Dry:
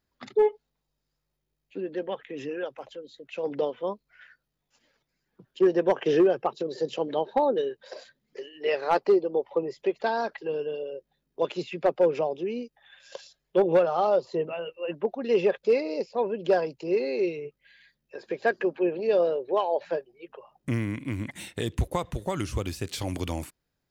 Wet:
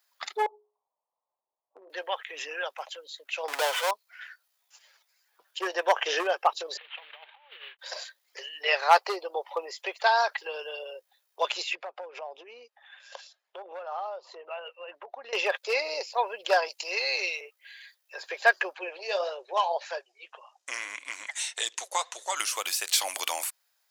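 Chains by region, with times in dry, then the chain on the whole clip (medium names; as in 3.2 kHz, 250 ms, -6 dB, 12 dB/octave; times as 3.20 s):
0.46–1.90 s: steep low-pass 1.1 kHz 72 dB/octave + hum notches 60/120/180/240/300/360/420 Hz + compression 10:1, threshold -36 dBFS
3.48–3.91 s: high-pass 450 Hz 6 dB/octave + power-law waveshaper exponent 0.5
6.77–7.79 s: CVSD coder 16 kbps + differentiator + compressor with a negative ratio -51 dBFS, ratio -0.5
11.75–15.33 s: low-pass 1.2 kHz 6 dB/octave + compression 8:1, threshold -34 dBFS
16.68–17.41 s: high-pass 480 Hz + peaking EQ 8 kHz +6.5 dB 2.9 oct
18.74–22.37 s: flange 1.7 Hz, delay 0.3 ms, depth 7.9 ms, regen +60% + resonant low-pass 6.7 kHz, resonance Q 2.5
whole clip: high-pass 730 Hz 24 dB/octave; treble shelf 4.8 kHz +9.5 dB; trim +7 dB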